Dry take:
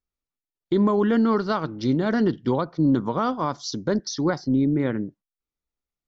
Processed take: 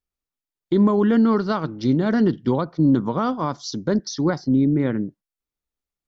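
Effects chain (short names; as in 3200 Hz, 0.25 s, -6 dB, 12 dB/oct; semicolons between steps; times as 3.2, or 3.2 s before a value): dynamic EQ 180 Hz, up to +4 dB, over -31 dBFS, Q 0.76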